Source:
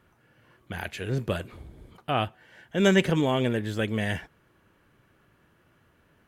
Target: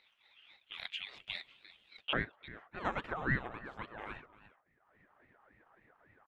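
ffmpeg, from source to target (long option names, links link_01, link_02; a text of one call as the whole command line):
ffmpeg -i in.wav -af "agate=range=-33dB:threshold=-49dB:ratio=3:detection=peak,acompressor=mode=upward:threshold=-33dB:ratio=2.5,asetnsamples=nb_out_samples=441:pad=0,asendcmd='2.13 bandpass f 1000',bandpass=frequency=3000:width_type=q:width=9.8:csg=0,aecho=1:1:348:0.15,aeval=exprs='val(0)*sin(2*PI*520*n/s+520*0.75/3.6*sin(2*PI*3.6*n/s))':channel_layout=same,volume=9dB" out.wav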